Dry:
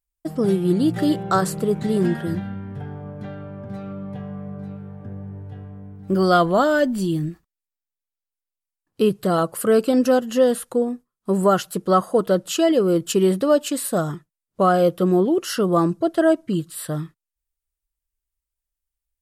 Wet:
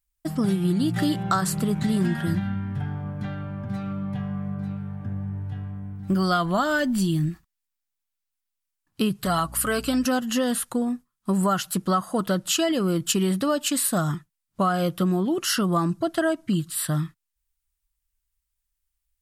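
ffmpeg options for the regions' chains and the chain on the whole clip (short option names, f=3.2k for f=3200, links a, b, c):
-filter_complex "[0:a]asettb=1/sr,asplit=3[a][b][c];[a]atrim=end=9.254[d];[b]atrim=start=9.25:end=10.05,asetpts=PTS-STARTPTS,afade=t=in:d=0.004:c=qsin,afade=t=out:st=0.796:d=0.004:c=qsin,equalizer=f=200:w=0.41:g=-5.5,aecho=1:1:7.1:0.47,atrim=end_sample=35280,aeval=exprs='val(0)+0.00708*(sin(2*PI*60*n/s)+sin(2*PI*2*60*n/s)/2+sin(2*PI*3*60*n/s)/3+sin(2*PI*4*60*n/s)/4+sin(2*PI*5*60*n/s)/5)':c=same[e];[c]atrim=start=10.046[f];[d][e]acrossfade=d=0.004:c1=hsin:c2=qsin[g];[g][f]acrossfade=d=0.004:c1=qsin:c2=hsin,equalizer=f=460:t=o:w=1:g=-14.5,acompressor=threshold=-24dB:ratio=6,volume=5dB"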